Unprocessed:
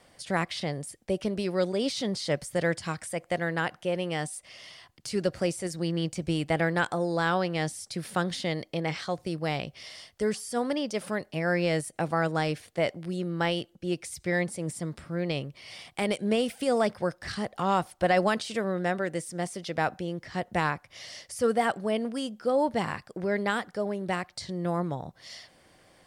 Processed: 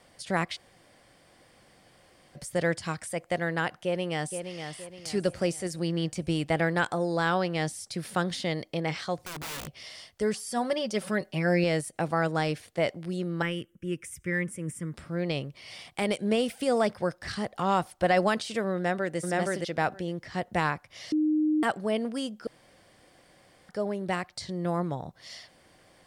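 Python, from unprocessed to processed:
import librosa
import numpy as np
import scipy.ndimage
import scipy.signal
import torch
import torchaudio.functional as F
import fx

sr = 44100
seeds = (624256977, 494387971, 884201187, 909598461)

y = fx.echo_throw(x, sr, start_s=3.83, length_s=0.81, ms=470, feedback_pct=40, wet_db=-7.5)
y = fx.overflow_wrap(y, sr, gain_db=32.0, at=(9.18, 9.84))
y = fx.comb(y, sr, ms=5.3, depth=0.65, at=(10.46, 11.64))
y = fx.fixed_phaser(y, sr, hz=1800.0, stages=4, at=(13.42, 14.94))
y = fx.echo_throw(y, sr, start_s=18.76, length_s=0.41, ms=470, feedback_pct=10, wet_db=-0.5)
y = fx.edit(y, sr, fx.room_tone_fill(start_s=0.56, length_s=1.8, crossfade_s=0.02),
    fx.bleep(start_s=21.12, length_s=0.51, hz=307.0, db=-21.5),
    fx.room_tone_fill(start_s=22.47, length_s=1.22), tone=tone)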